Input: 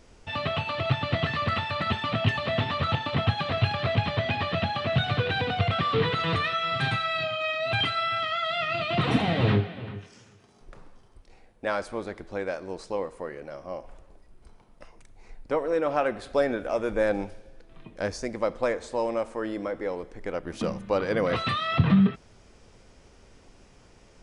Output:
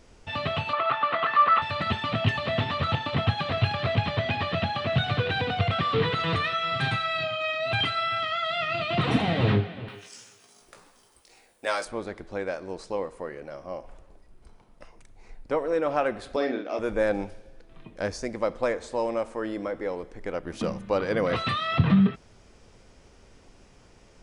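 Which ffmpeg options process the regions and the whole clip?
-filter_complex "[0:a]asettb=1/sr,asplit=3[s0][s1][s2];[s0]atrim=end=0.734[s3];[s1]atrim=start=0.73:end=1.62,asetpts=PTS-STARTPTS,afade=t=in:d=0.004:c=qsin,afade=t=out:st=0.886:d=0.004:c=qsin,highpass=450,lowpass=2900,equalizer=f=1200:t=o:w=0.69:g=12.5[s4];[s2]atrim=start=1.616[s5];[s3][s4]acrossfade=d=0.004:c1=hsin:c2=qsin[s6];[s6][s5]acrossfade=d=0.004:c1=qsin:c2=hsin,asettb=1/sr,asplit=3[s7][s8][s9];[s7]atrim=end=9.884[s10];[s8]atrim=start=9.88:end=11.85,asetpts=PTS-STARTPTS,afade=t=in:d=0.004:c=qsin,afade=t=out:st=1.966:d=0.004:c=qsin,aemphasis=mode=production:type=riaa,asplit=2[s11][s12];[s12]adelay=17,volume=0.473[s13];[s11][s13]amix=inputs=2:normalize=0,atrim=end_sample=86877[s14];[s9]atrim=start=11.846[s15];[s10][s14]acrossfade=d=0.004:c1=hsin:c2=qsin[s16];[s16][s15]acrossfade=d=0.004:c1=qsin:c2=hsin,asettb=1/sr,asplit=3[s17][s18][s19];[s17]atrim=end=16.364[s20];[s18]atrim=start=16.36:end=16.79,asetpts=PTS-STARTPTS,afade=t=in:d=0.004:c=qsin,afade=t=out:st=0.426:d=0.004:c=qsin,agate=range=0.0224:threshold=0.02:ratio=3:release=100:detection=peak,highpass=270,equalizer=f=290:t=q:w=4:g=5,equalizer=f=540:t=q:w=4:g=-6,equalizer=f=910:t=q:w=4:g=-6,equalizer=f=1500:t=q:w=4:g=-6,equalizer=f=4300:t=q:w=4:g=3,lowpass=f=5500:w=0.5412,lowpass=f=5500:w=1.3066,asplit=2[s21][s22];[s22]adelay=45,volume=0.562[s23];[s21][s23]amix=inputs=2:normalize=0,atrim=end_sample=18963[s24];[s19]atrim=start=16.786[s25];[s20][s24]acrossfade=d=0.004:c1=hsin:c2=qsin[s26];[s26][s25]acrossfade=d=0.004:c1=qsin:c2=hsin"

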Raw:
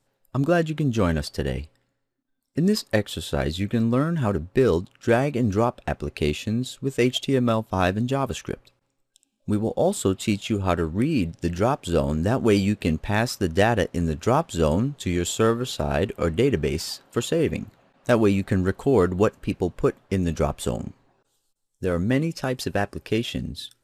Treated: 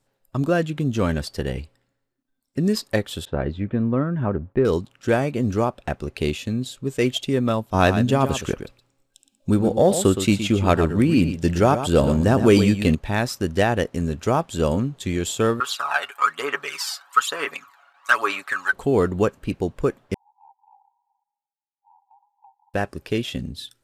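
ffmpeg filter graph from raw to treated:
-filter_complex "[0:a]asettb=1/sr,asplit=3[s0][s1][s2];[s0]atrim=end=3.254[s3];[s1]atrim=start=3.25:end=4.65,asetpts=PTS-STARTPTS,afade=t=in:d=0.004:c=qsin,afade=t=out:st=1.396:d=0.004:c=qsin,lowpass=1600,agate=range=0.0224:threshold=0.00398:ratio=3:release=100:detection=peak[s4];[s2]atrim=start=4.646[s5];[s3][s4]acrossfade=d=0.004:c1=hsin:c2=qsin[s6];[s6][s5]acrossfade=d=0.004:c1=qsin:c2=hsin,asettb=1/sr,asplit=3[s7][s8][s9];[s7]atrim=end=7.744[s10];[s8]atrim=start=7.74:end=12.95,asetpts=PTS-STARTPTS,afade=t=in:d=0.004:c=qsin,afade=t=out:st=5.206:d=0.004:c=qsin,acontrast=22,aecho=1:1:118:0.316,atrim=end_sample=229761[s11];[s9]atrim=start=12.946[s12];[s10][s11]acrossfade=d=0.004:c1=hsin:c2=qsin[s13];[s13][s12]acrossfade=d=0.004:c1=qsin:c2=hsin,asettb=1/sr,asplit=3[s14][s15][s16];[s14]atrim=end=15.604[s17];[s15]atrim=start=15.6:end=18.73,asetpts=PTS-STARTPTS,afade=t=in:d=0.004:c=qsin,afade=t=out:st=3.126:d=0.004:c=qsin,aecho=1:1:7.1:0.6,atrim=end_sample=138033,aphaser=in_gain=1:out_gain=1:delay=1.4:decay=0.58:speed=1.1:type=sinusoidal,highpass=f=1200:t=q:w=4.1[s18];[s16]atrim=start=18.726[s19];[s17][s18]acrossfade=d=0.004:c1=hsin:c2=qsin[s20];[s20][s19]acrossfade=d=0.004:c1=qsin:c2=hsin,asettb=1/sr,asplit=3[s21][s22][s23];[s21]atrim=end=20.144[s24];[s22]atrim=start=20.14:end=22.74,asetpts=PTS-STARTPTS,afade=t=in:d=0.004:c=qsin,afade=t=out:st=2.596:d=0.004:c=qsin,asuperpass=centerf=870:order=12:qfactor=4.4,acompressor=threshold=0.002:ratio=2.5:attack=3.2:release=140:knee=1:detection=peak[s25];[s23]atrim=start=22.736[s26];[s24][s25]acrossfade=d=0.004:c1=hsin:c2=qsin[s27];[s27][s26]acrossfade=d=0.004:c1=qsin:c2=hsin"

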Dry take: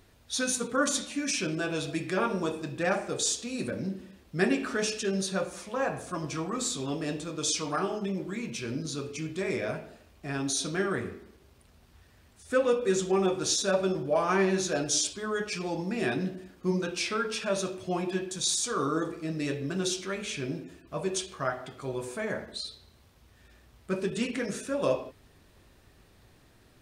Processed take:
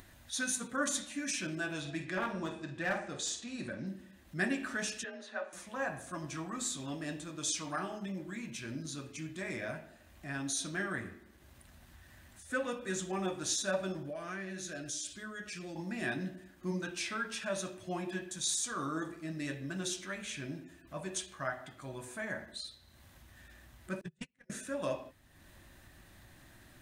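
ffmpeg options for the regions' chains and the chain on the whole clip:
-filter_complex "[0:a]asettb=1/sr,asplit=3[s0][s1][s2];[s0]atrim=end=1.804[s3];[s1]atrim=start=1.8:end=3.87,asetpts=PTS-STARTPTS,afade=t=in:d=0.004:c=qsin,afade=t=out:st=2.066:d=0.004:c=qsin,lowpass=6000,asoftclip=type=hard:threshold=0.0841,asplit=2[s4][s5];[s5]adelay=49,volume=0.355[s6];[s4][s6]amix=inputs=2:normalize=0,atrim=end_sample=91287[s7];[s2]atrim=start=3.866[s8];[s3][s7]acrossfade=d=0.004:c1=hsin:c2=qsin[s9];[s9][s8]acrossfade=d=0.004:c1=qsin:c2=hsin,asettb=1/sr,asplit=3[s10][s11][s12];[s10]atrim=end=5.044[s13];[s11]atrim=start=5.04:end=5.53,asetpts=PTS-STARTPTS,afade=t=in:d=0.004:c=qsin,afade=t=out:st=0.486:d=0.004:c=qsin,highpass=430,lowpass=2500,afreqshift=38[s14];[s12]atrim=start=5.526[s15];[s13][s14]acrossfade=d=0.004:c1=hsin:c2=qsin[s16];[s16][s15]acrossfade=d=0.004:c1=qsin:c2=hsin,asettb=1/sr,asplit=3[s17][s18][s19];[s17]atrim=end=14.104[s20];[s18]atrim=start=14.1:end=15.76,asetpts=PTS-STARTPTS,afade=t=in:d=0.004:c=qsin,afade=t=out:st=1.656:d=0.004:c=qsin,equalizer=f=900:w=3.2:g=-14.5,acompressor=threshold=0.0224:ratio=2.5:attack=3.2:release=140:knee=1:detection=peak[s21];[s19]atrim=start=15.756[s22];[s20][s21]acrossfade=d=0.004:c1=hsin:c2=qsin[s23];[s23][s22]acrossfade=d=0.004:c1=qsin:c2=hsin,asettb=1/sr,asplit=3[s24][s25][s26];[s24]atrim=end=24.014[s27];[s25]atrim=start=24.01:end=24.5,asetpts=PTS-STARTPTS,afade=t=in:d=0.004:c=qsin,afade=t=out:st=0.486:d=0.004:c=qsin,agate=range=0.01:threshold=0.0447:ratio=16:release=100:detection=peak,lowshelf=f=190:t=q:w=3:g=7.5[s28];[s26]atrim=start=24.496[s29];[s27][s28]acrossfade=d=0.004:c1=hsin:c2=qsin[s30];[s30][s29]acrossfade=d=0.004:c1=qsin:c2=hsin,highshelf=f=7400:g=5.5,acompressor=mode=upward:threshold=0.00891:ratio=2.5,superequalizer=7b=0.355:11b=1.78:14b=0.708,volume=0.447"

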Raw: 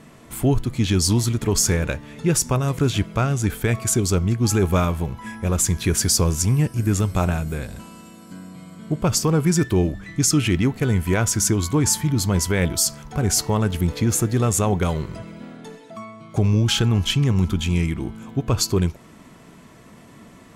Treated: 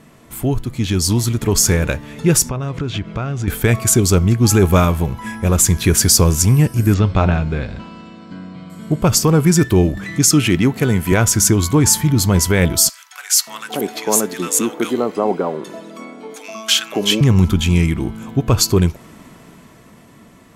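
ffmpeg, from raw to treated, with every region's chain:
-filter_complex "[0:a]asettb=1/sr,asplit=3[s0][s1][s2];[s0]atrim=end=2.494[s3];[s1]atrim=start=2.49:end=3.48,asetpts=PTS-STARTPTS,afade=t=in:d=0.004:c=qsin,afade=t=out:st=0.986:d=0.004:c=qsin,lowpass=4000,acompressor=threshold=0.0562:ratio=4:attack=3.2:release=140:knee=1:detection=peak[s4];[s2]atrim=start=3.476[s5];[s3][s4]acrossfade=d=0.004:c1=hsin:c2=qsin[s6];[s6][s5]acrossfade=d=0.004:c1=qsin:c2=hsin,asettb=1/sr,asplit=3[s7][s8][s9];[s7]atrim=end=6.944[s10];[s8]atrim=start=6.94:end=8.7,asetpts=PTS-STARTPTS,afade=t=in:d=0.004:c=qsin,afade=t=out:st=1.756:d=0.004:c=qsin,lowpass=f=4500:w=0.5412,lowpass=f=4500:w=1.3066,bandreject=f=178.9:t=h:w=4,bandreject=f=357.8:t=h:w=4,bandreject=f=536.7:t=h:w=4,bandreject=f=715.6:t=h:w=4,bandreject=f=894.5:t=h:w=4,bandreject=f=1073.4:t=h:w=4,bandreject=f=1252.3:t=h:w=4,bandreject=f=1431.2:t=h:w=4,bandreject=f=1610.1:t=h:w=4,bandreject=f=1789:t=h:w=4,bandreject=f=1967.9:t=h:w=4,bandreject=f=2146.8:t=h:w=4,bandreject=f=2325.7:t=h:w=4,bandreject=f=2504.6:t=h:w=4,bandreject=f=2683.5:t=h:w=4,bandreject=f=2862.4:t=h:w=4,bandreject=f=3041.3:t=h:w=4,bandreject=f=3220.2:t=h:w=4,bandreject=f=3399.1:t=h:w=4,bandreject=f=3578:t=h:w=4,bandreject=f=3756.9:t=h:w=4,bandreject=f=3935.8:t=h:w=4,bandreject=f=4114.7:t=h:w=4,bandreject=f=4293.6:t=h:w=4,bandreject=f=4472.5:t=h:w=4,bandreject=f=4651.4:t=h:w=4,bandreject=f=4830.3:t=h:w=4,bandreject=f=5009.2:t=h:w=4,bandreject=f=5188.1:t=h:w=4,bandreject=f=5367:t=h:w=4,bandreject=f=5545.9:t=h:w=4[s11];[s9]atrim=start=8.696[s12];[s10][s11]acrossfade=d=0.004:c1=hsin:c2=qsin[s13];[s13][s12]acrossfade=d=0.004:c1=qsin:c2=hsin,asettb=1/sr,asplit=3[s14][s15][s16];[s14]atrim=end=9.974[s17];[s15]atrim=start=9.97:end=11.12,asetpts=PTS-STARTPTS,afade=t=in:d=0.004:c=qsin,afade=t=out:st=1.146:d=0.004:c=qsin,highpass=120,acompressor=mode=upward:threshold=0.0501:ratio=2.5:attack=3.2:release=140:knee=2.83:detection=peak[s18];[s16]atrim=start=11.116[s19];[s17][s18]acrossfade=d=0.004:c1=hsin:c2=qsin[s20];[s20][s19]acrossfade=d=0.004:c1=qsin:c2=hsin,asettb=1/sr,asplit=3[s21][s22][s23];[s21]atrim=end=12.894[s24];[s22]atrim=start=12.89:end=17.21,asetpts=PTS-STARTPTS,afade=t=in:d=0.004:c=qsin,afade=t=out:st=4.316:d=0.004:c=qsin,highpass=f=250:w=0.5412,highpass=f=250:w=1.3066,acrossover=split=1300[s25][s26];[s25]adelay=580[s27];[s27][s26]amix=inputs=2:normalize=0,atrim=end_sample=190512[s28];[s23]atrim=start=17.206[s29];[s24][s28]acrossfade=d=0.004:c1=hsin:c2=qsin[s30];[s30][s29]acrossfade=d=0.004:c1=qsin:c2=hsin,equalizer=f=13000:t=o:w=0.34:g=5,dynaudnorm=f=200:g=13:m=3.76"

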